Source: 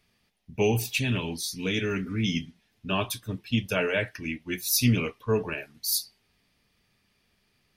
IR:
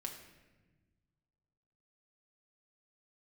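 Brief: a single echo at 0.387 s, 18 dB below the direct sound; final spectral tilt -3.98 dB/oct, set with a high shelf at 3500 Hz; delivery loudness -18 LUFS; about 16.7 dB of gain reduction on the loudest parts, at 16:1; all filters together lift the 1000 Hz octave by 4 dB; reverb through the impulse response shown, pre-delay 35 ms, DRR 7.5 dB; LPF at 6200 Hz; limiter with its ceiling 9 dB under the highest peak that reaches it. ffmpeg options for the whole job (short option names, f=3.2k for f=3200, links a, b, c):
-filter_complex "[0:a]lowpass=6.2k,equalizer=f=1k:t=o:g=4.5,highshelf=f=3.5k:g=5,acompressor=threshold=-34dB:ratio=16,alimiter=level_in=6.5dB:limit=-24dB:level=0:latency=1,volume=-6.5dB,aecho=1:1:387:0.126,asplit=2[a][b];[1:a]atrim=start_sample=2205,adelay=35[c];[b][c]afir=irnorm=-1:irlink=0,volume=-5.5dB[d];[a][d]amix=inputs=2:normalize=0,volume=22.5dB"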